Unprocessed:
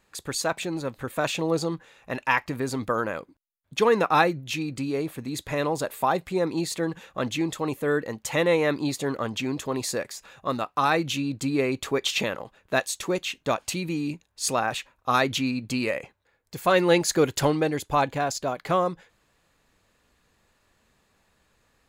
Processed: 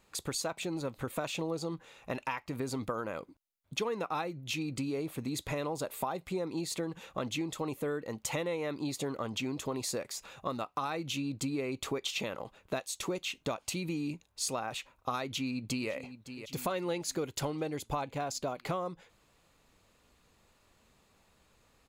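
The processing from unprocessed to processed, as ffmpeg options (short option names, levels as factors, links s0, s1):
-filter_complex "[0:a]asplit=2[s0][s1];[s1]afade=t=in:st=15.25:d=0.01,afade=t=out:st=15.89:d=0.01,aecho=0:1:560|1120|1680|2240|2800:0.125893|0.0755355|0.0453213|0.0271928|0.0163157[s2];[s0][s2]amix=inputs=2:normalize=0,acompressor=threshold=0.0251:ratio=6,equalizer=f=1700:w=5.1:g=-7"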